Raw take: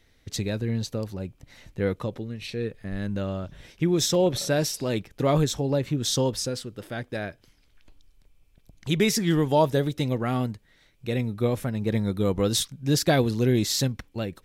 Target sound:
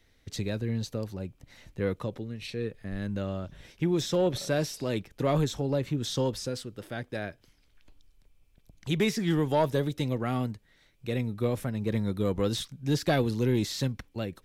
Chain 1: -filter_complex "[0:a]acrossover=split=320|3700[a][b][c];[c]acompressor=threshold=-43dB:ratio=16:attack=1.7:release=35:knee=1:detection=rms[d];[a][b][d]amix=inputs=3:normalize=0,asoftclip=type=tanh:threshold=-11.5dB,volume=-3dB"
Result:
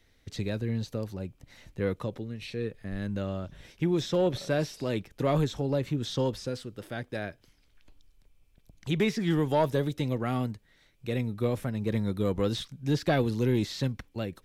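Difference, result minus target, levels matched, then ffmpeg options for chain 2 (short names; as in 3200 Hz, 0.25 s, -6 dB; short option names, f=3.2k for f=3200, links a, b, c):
compressor: peak gain reduction +9 dB
-filter_complex "[0:a]acrossover=split=320|3700[a][b][c];[c]acompressor=threshold=-33.5dB:ratio=16:attack=1.7:release=35:knee=1:detection=rms[d];[a][b][d]amix=inputs=3:normalize=0,asoftclip=type=tanh:threshold=-11.5dB,volume=-3dB"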